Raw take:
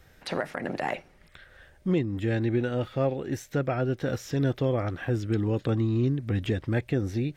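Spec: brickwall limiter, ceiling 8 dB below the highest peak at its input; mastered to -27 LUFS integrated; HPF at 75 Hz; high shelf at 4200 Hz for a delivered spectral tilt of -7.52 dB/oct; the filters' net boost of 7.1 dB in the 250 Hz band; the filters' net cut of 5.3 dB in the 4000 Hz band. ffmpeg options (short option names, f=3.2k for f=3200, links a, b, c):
-af "highpass=75,equalizer=f=250:t=o:g=9,equalizer=f=4k:t=o:g=-4,highshelf=f=4.2k:g=-5.5,volume=1.5dB,alimiter=limit=-16.5dB:level=0:latency=1"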